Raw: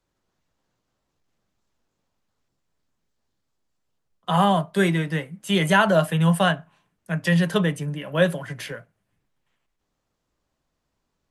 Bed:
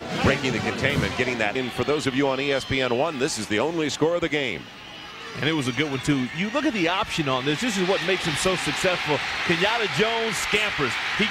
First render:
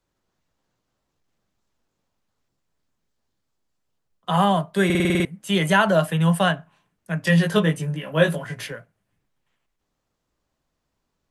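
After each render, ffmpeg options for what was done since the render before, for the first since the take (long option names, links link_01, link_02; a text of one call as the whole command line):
ffmpeg -i in.wav -filter_complex "[0:a]asettb=1/sr,asplit=3[link_01][link_02][link_03];[link_01]atrim=end=7.254[link_04];[link_02]atrim=start=7.25:end=8.67,asetpts=PTS-STARTPTS,afade=type=in:duration=0.004:curve=qsin,afade=type=out:start_time=1.416:duration=0.004:curve=qsin,asplit=2[link_05][link_06];[link_06]adelay=19,volume=-3dB[link_07];[link_05][link_07]amix=inputs=2:normalize=0,atrim=end_sample=62622[link_08];[link_03]atrim=start=8.666[link_09];[link_04][link_08]acrossfade=duration=0.004:curve1=hsin:curve2=qsin[link_10];[link_10][link_09]acrossfade=duration=0.004:curve1=qsin:curve2=hsin,asplit=9[link_11][link_12][link_13][link_14][link_15][link_16][link_17][link_18][link_19];[link_11]atrim=end=4.902[link_20];[link_12]atrim=start=4.848:end=4.902[link_21];[link_13]atrim=start=4.848:end=4.902[link_22];[link_14]atrim=start=4.848:end=4.902[link_23];[link_15]atrim=start=4.848:end=4.902[link_24];[link_16]atrim=start=4.848:end=4.902[link_25];[link_17]atrim=start=4.848:end=4.902[link_26];[link_18]atrim=start=4.848:end=4.902[link_27];[link_19]atrim=start=5.248[link_28];[link_20][link_21]acrossfade=duration=0.004:curve1=hsin:curve2=hsin[link_29];[link_29][link_22]acrossfade=duration=0.004:curve1=hsin:curve2=hsin[link_30];[link_30][link_23]acrossfade=duration=0.004:curve1=hsin:curve2=hsin[link_31];[link_31][link_24]acrossfade=duration=0.004:curve1=hsin:curve2=hsin[link_32];[link_32][link_25]acrossfade=duration=0.004:curve1=hsin:curve2=hsin[link_33];[link_33][link_26]acrossfade=duration=0.004:curve1=hsin:curve2=hsin[link_34];[link_34][link_27]acrossfade=duration=0.004:curve1=hsin:curve2=hsin[link_35];[link_35][link_28]acrossfade=duration=0.004:curve1=hsin:curve2=hsin" out.wav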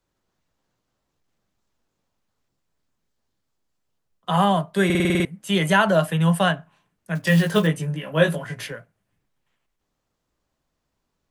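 ffmpeg -i in.wav -filter_complex "[0:a]asettb=1/sr,asplit=3[link_01][link_02][link_03];[link_01]atrim=end=7.154[link_04];[link_02]atrim=start=7.15:end=7.67,asetpts=PTS-STARTPTS,afade=type=in:duration=0.004:curve=qsin,afade=type=out:start_time=0.516:duration=0.004:curve=qsin,acrusher=bits=6:mode=log:mix=0:aa=0.000001[link_05];[link_03]atrim=start=7.666[link_06];[link_04][link_05]acrossfade=duration=0.004:curve1=hsin:curve2=qsin[link_07];[link_07][link_06]acrossfade=duration=0.004:curve1=qsin:curve2=hsin" out.wav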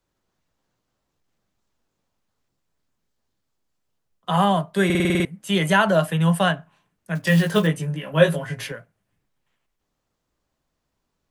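ffmpeg -i in.wav -filter_complex "[0:a]asettb=1/sr,asplit=3[link_01][link_02][link_03];[link_01]atrim=end=8.134[link_04];[link_02]atrim=start=8.13:end=8.72,asetpts=PTS-STARTPTS,afade=type=in:duration=0.004:curve=qsin,afade=type=out:start_time=0.586:duration=0.004:curve=qsin,aecho=1:1:7.4:0.53,atrim=end_sample=26019[link_05];[link_03]atrim=start=8.716[link_06];[link_04][link_05]acrossfade=duration=0.004:curve1=hsin:curve2=qsin[link_07];[link_07][link_06]acrossfade=duration=0.004:curve1=qsin:curve2=hsin" out.wav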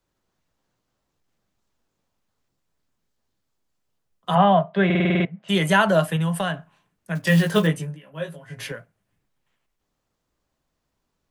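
ffmpeg -i in.wav -filter_complex "[0:a]asplit=3[link_01][link_02][link_03];[link_01]afade=type=out:start_time=4.34:duration=0.02[link_04];[link_02]highpass=140,equalizer=frequency=180:width_type=q:width=4:gain=4,equalizer=frequency=290:width_type=q:width=4:gain=-9,equalizer=frequency=670:width_type=q:width=4:gain=9,lowpass=frequency=3300:width=0.5412,lowpass=frequency=3300:width=1.3066,afade=type=in:start_time=4.34:duration=0.02,afade=type=out:start_time=5.48:duration=0.02[link_05];[link_03]afade=type=in:start_time=5.48:duration=0.02[link_06];[link_04][link_05][link_06]amix=inputs=3:normalize=0,asettb=1/sr,asplit=3[link_07][link_08][link_09];[link_07]atrim=end=6.164[link_10];[link_08]atrim=start=6.16:end=7.21,asetpts=PTS-STARTPTS,afade=type=in:duration=0.004:curve=qsin,afade=type=out:start_time=1.046:duration=0.004:curve=qsin,acompressor=threshold=-20dB:ratio=4:attack=3.2:release=140:knee=1:detection=peak[link_11];[link_09]atrim=start=7.206[link_12];[link_10][link_11]acrossfade=duration=0.004:curve1=hsin:curve2=qsin[link_13];[link_13][link_12]acrossfade=duration=0.004:curve1=qsin:curve2=hsin,asplit=3[link_14][link_15][link_16];[link_14]atrim=end=7.99,asetpts=PTS-STARTPTS,afade=type=out:start_time=7.76:duration=0.23:silence=0.177828[link_17];[link_15]atrim=start=7.99:end=8.46,asetpts=PTS-STARTPTS,volume=-15dB[link_18];[link_16]atrim=start=8.46,asetpts=PTS-STARTPTS,afade=type=in:duration=0.23:silence=0.177828[link_19];[link_17][link_18][link_19]concat=n=3:v=0:a=1" out.wav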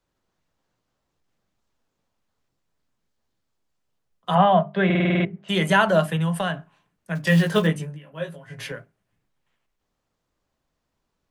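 ffmpeg -i in.wav -af "highshelf=frequency=8100:gain=-6,bandreject=frequency=50:width_type=h:width=6,bandreject=frequency=100:width_type=h:width=6,bandreject=frequency=150:width_type=h:width=6,bandreject=frequency=200:width_type=h:width=6,bandreject=frequency=250:width_type=h:width=6,bandreject=frequency=300:width_type=h:width=6,bandreject=frequency=350:width_type=h:width=6,bandreject=frequency=400:width_type=h:width=6" out.wav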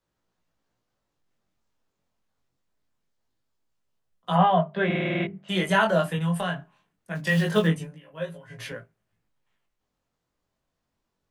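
ffmpeg -i in.wav -af "flanger=delay=17:depth=6.1:speed=0.24" out.wav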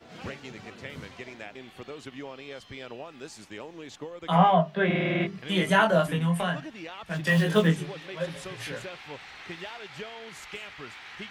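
ffmpeg -i in.wav -i bed.wav -filter_complex "[1:a]volume=-18dB[link_01];[0:a][link_01]amix=inputs=2:normalize=0" out.wav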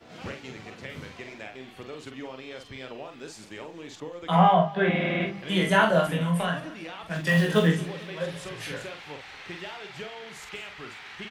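ffmpeg -i in.wav -filter_complex "[0:a]asplit=2[link_01][link_02];[link_02]adelay=46,volume=-6dB[link_03];[link_01][link_03]amix=inputs=2:normalize=0,aecho=1:1:222|444|666|888:0.0891|0.0508|0.029|0.0165" out.wav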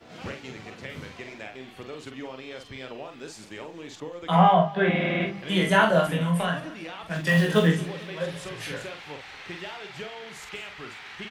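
ffmpeg -i in.wav -af "volume=1dB" out.wav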